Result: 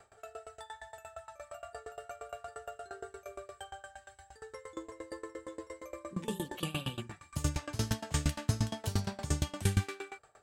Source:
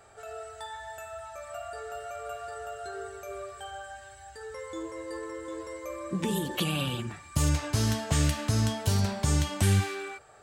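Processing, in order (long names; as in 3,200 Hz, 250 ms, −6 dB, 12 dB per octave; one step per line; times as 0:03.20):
tremolo with a ramp in dB decaying 8.6 Hz, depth 23 dB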